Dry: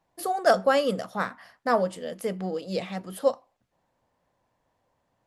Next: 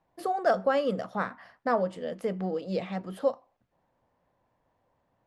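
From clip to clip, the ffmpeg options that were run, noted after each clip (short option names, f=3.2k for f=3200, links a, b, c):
-af "aemphasis=mode=reproduction:type=75fm,acompressor=threshold=-28dB:ratio=1.5"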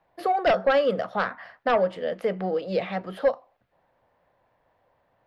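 -filter_complex "[0:a]equalizer=f=250:t=o:w=1:g=-3,equalizer=f=1k:t=o:w=1:g=-6,equalizer=f=4k:t=o:w=1:g=4,equalizer=f=8k:t=o:w=1:g=-9,acrossover=split=510|2300[a][b][c];[b]aeval=exprs='0.112*sin(PI/2*2*val(0)/0.112)':c=same[d];[a][d][c]amix=inputs=3:normalize=0,volume=2dB"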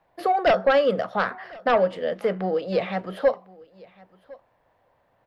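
-af "aecho=1:1:1055:0.0668,volume=2dB"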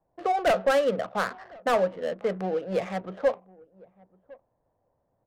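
-af "adynamicsmooth=sensitivity=4.5:basefreq=640,volume=-3.5dB"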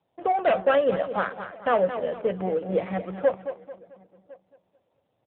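-filter_complex "[0:a]asplit=2[a][b];[b]aecho=0:1:220|440|660|880:0.299|0.11|0.0409|0.0151[c];[a][c]amix=inputs=2:normalize=0,volume=2dB" -ar 8000 -c:a libopencore_amrnb -b:a 7400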